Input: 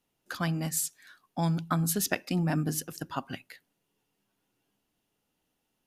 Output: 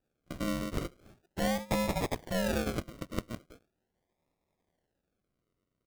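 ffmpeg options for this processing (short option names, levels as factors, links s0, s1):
-filter_complex "[0:a]asplit=2[s0][s1];[s1]adelay=105,volume=0.0501,highshelf=f=4000:g=-2.36[s2];[s0][s2]amix=inputs=2:normalize=0,aeval=exprs='val(0)*sin(2*PI*370*n/s)':c=same,acrusher=samples=41:mix=1:aa=0.000001:lfo=1:lforange=24.6:lforate=0.4"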